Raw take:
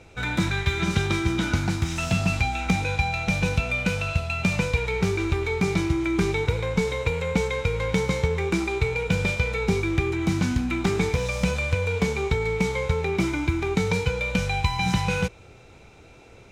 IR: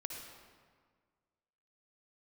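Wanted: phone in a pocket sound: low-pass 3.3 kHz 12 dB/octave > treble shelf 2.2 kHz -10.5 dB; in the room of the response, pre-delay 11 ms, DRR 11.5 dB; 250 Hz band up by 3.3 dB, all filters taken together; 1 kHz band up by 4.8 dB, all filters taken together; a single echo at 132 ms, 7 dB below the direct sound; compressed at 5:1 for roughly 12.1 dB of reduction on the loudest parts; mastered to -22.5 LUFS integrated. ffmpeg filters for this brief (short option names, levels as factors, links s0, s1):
-filter_complex "[0:a]equalizer=f=250:t=o:g=5,equalizer=f=1000:t=o:g=8,acompressor=threshold=0.0355:ratio=5,aecho=1:1:132:0.447,asplit=2[s0][s1];[1:a]atrim=start_sample=2205,adelay=11[s2];[s1][s2]afir=irnorm=-1:irlink=0,volume=0.299[s3];[s0][s3]amix=inputs=2:normalize=0,lowpass=3300,highshelf=f=2200:g=-10.5,volume=3.16"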